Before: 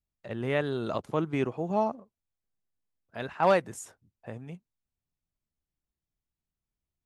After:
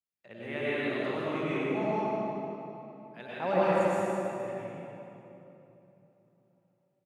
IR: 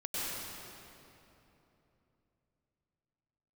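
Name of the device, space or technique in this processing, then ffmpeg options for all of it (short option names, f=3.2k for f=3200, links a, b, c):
PA in a hall: -filter_complex "[0:a]asettb=1/sr,asplit=3[a][b][c];[a]atrim=end=3.334[d];[b]atrim=start=3.33:end=3.81,asetpts=PTS-STARTPTS,afade=t=in:d=0.004:c=qsin,afade=t=out:st=0.476:d=0.004:c=qsin,tiltshelf=f=970:g=6[e];[c]atrim=start=3.806[f];[d][e]acrossfade=d=0.004:c1=hsin:c2=qsin[g];[g][f]acrossfade=d=0.004:c1=qsin:c2=hsin,highpass=160,equalizer=f=2.3k:t=o:w=0.95:g=7,aecho=1:1:156:0.447[h];[1:a]atrim=start_sample=2205[i];[h][i]afir=irnorm=-1:irlink=0,volume=-8dB"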